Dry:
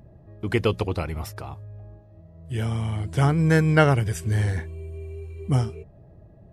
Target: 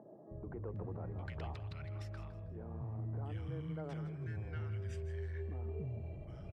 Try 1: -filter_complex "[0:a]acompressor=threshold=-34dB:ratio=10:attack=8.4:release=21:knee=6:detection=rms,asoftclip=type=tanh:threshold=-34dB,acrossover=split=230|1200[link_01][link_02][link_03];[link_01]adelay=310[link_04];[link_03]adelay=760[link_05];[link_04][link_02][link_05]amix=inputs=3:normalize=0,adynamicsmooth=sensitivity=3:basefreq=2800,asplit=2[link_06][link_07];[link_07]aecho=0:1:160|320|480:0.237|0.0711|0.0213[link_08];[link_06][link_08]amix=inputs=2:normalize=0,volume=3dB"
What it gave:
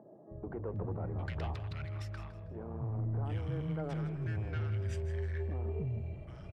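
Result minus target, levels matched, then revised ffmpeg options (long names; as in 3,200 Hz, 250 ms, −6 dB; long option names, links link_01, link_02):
downward compressor: peak gain reduction −8.5 dB
-filter_complex "[0:a]acompressor=threshold=-43.5dB:ratio=10:attack=8.4:release=21:knee=6:detection=rms,asoftclip=type=tanh:threshold=-34dB,acrossover=split=230|1200[link_01][link_02][link_03];[link_01]adelay=310[link_04];[link_03]adelay=760[link_05];[link_04][link_02][link_05]amix=inputs=3:normalize=0,adynamicsmooth=sensitivity=3:basefreq=2800,asplit=2[link_06][link_07];[link_07]aecho=0:1:160|320|480:0.237|0.0711|0.0213[link_08];[link_06][link_08]amix=inputs=2:normalize=0,volume=3dB"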